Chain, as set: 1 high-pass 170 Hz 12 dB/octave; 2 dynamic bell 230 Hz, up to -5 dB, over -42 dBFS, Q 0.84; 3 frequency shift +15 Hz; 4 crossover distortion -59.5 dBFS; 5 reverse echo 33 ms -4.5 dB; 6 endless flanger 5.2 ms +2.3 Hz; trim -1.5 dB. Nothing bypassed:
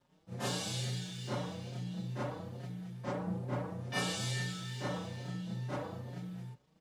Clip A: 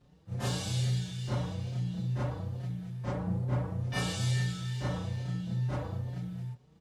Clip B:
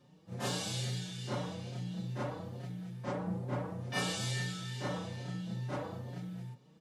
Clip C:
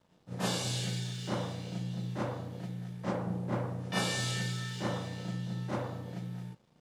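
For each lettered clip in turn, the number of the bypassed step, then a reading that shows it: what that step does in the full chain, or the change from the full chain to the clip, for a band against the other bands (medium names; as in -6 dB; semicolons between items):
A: 1, 125 Hz band +8.0 dB; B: 4, distortion -27 dB; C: 6, loudness change +3.0 LU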